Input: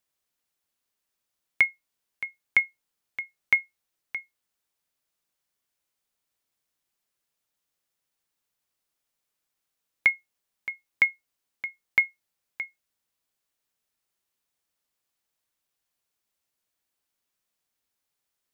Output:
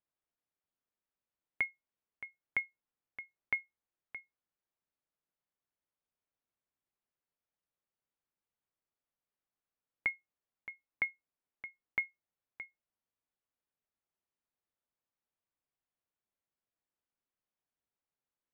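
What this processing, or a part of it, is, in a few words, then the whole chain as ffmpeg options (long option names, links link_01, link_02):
phone in a pocket: -af "lowpass=3400,highshelf=frequency=2200:gain=-12,volume=-6dB"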